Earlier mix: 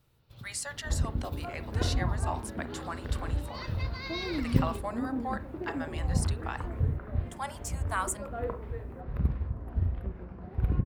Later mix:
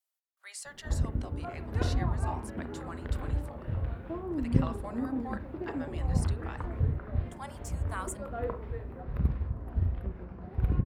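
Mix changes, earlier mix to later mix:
speech −7.0 dB
first sound: muted

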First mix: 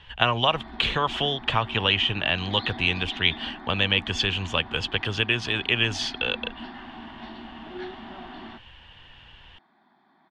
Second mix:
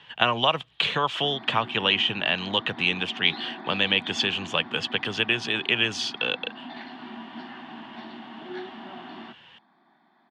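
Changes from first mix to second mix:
background: entry +0.75 s
master: add high-pass filter 140 Hz 24 dB per octave

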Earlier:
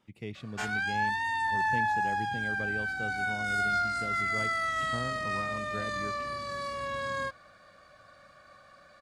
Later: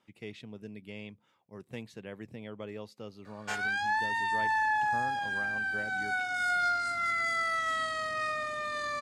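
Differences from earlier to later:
background: entry +2.90 s
master: add low-shelf EQ 170 Hz −12 dB

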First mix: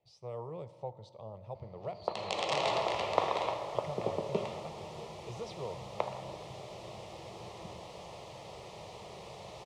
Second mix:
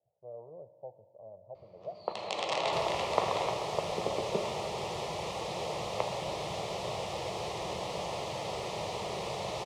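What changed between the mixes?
speech: add transistor ladder low-pass 710 Hz, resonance 65%
second sound +11.5 dB
master: add low-shelf EQ 120 Hz −5.5 dB

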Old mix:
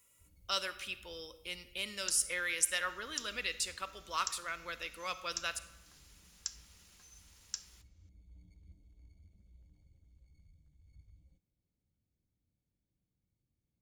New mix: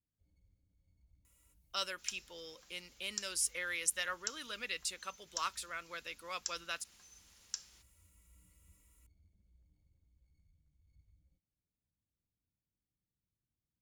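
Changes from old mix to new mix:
speech: entry +1.25 s
first sound −8.0 dB
reverb: off

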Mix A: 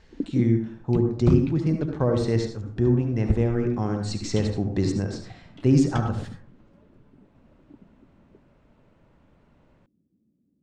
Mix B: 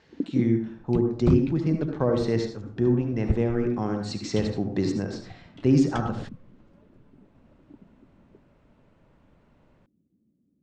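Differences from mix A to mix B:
speech: add band-pass filter 140–6,100 Hz
second sound: send off

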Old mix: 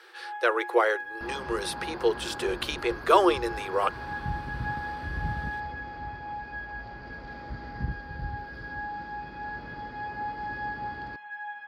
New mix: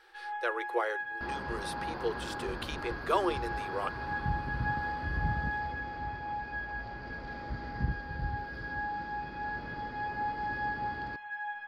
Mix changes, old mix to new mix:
speech −9.0 dB
first sound: remove high-pass filter 130 Hz 24 dB per octave

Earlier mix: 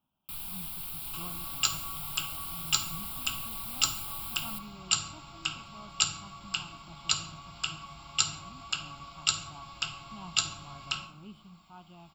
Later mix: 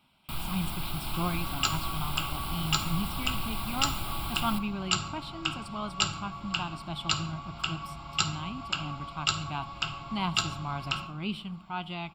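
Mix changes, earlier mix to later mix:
speech: remove moving average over 21 samples
second sound −6.5 dB
master: remove first-order pre-emphasis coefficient 0.8

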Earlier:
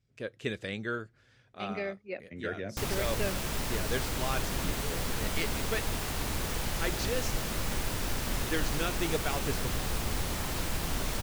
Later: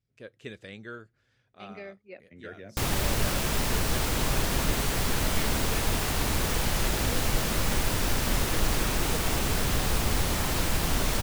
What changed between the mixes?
speech −7.0 dB
background +6.0 dB

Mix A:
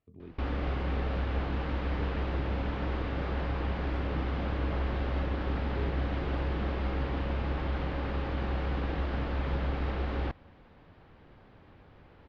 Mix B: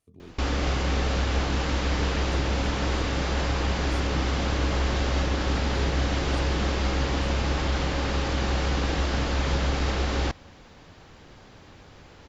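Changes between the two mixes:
background +5.5 dB
master: remove high-frequency loss of the air 390 metres

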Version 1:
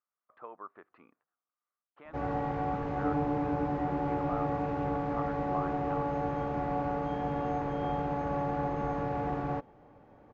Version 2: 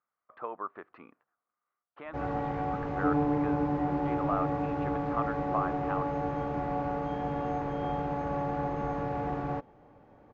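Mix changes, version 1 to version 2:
speech +8.0 dB
second sound +5.0 dB

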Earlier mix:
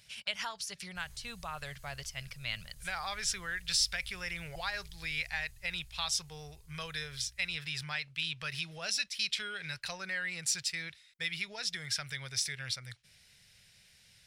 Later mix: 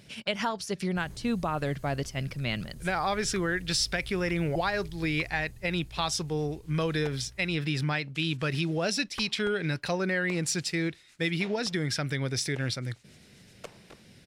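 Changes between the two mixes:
second sound: unmuted
master: remove guitar amp tone stack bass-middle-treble 10-0-10

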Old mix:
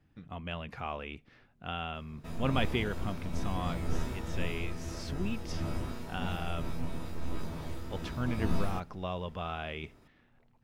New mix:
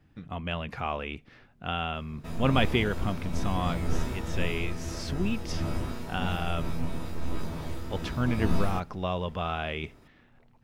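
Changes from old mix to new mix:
speech +6.0 dB
background +4.0 dB

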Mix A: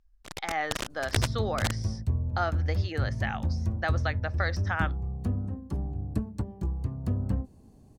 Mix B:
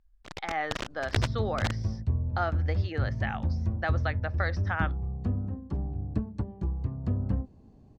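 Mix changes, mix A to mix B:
first sound: remove high-frequency loss of the air 52 metres
master: add high-frequency loss of the air 150 metres

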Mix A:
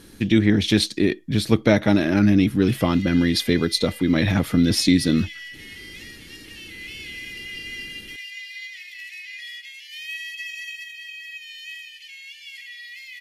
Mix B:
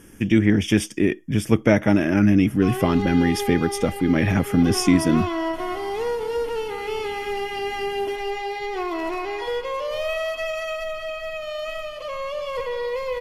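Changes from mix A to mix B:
speech: add Butterworth band-reject 4,100 Hz, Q 2
background: remove Butterworth high-pass 1,800 Hz 96 dB per octave

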